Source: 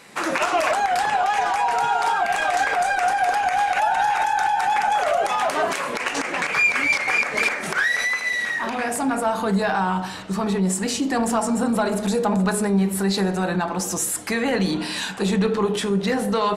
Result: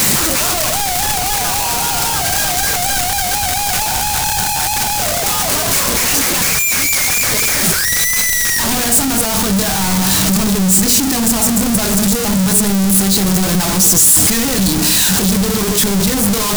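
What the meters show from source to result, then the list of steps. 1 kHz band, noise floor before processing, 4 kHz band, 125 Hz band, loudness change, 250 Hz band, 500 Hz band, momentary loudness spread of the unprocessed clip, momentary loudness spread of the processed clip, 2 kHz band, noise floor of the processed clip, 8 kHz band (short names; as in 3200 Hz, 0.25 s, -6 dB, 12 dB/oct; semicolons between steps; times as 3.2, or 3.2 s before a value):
-0.5 dB, -29 dBFS, +14.0 dB, +9.5 dB, +9.0 dB, +7.5 dB, +1.0 dB, 5 LU, 4 LU, +2.5 dB, -17 dBFS, +19.0 dB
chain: infinite clipping; tone controls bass +12 dB, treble +13 dB; gain +1 dB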